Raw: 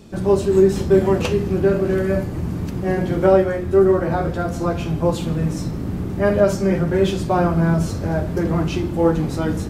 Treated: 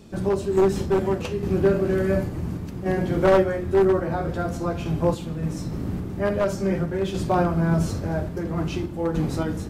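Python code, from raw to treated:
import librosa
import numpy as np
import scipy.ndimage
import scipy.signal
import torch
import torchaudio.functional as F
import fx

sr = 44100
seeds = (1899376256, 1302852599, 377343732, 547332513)

y = np.minimum(x, 2.0 * 10.0 ** (-9.0 / 20.0) - x)
y = fx.tremolo_random(y, sr, seeds[0], hz=3.5, depth_pct=55)
y = y * librosa.db_to_amplitude(-2.0)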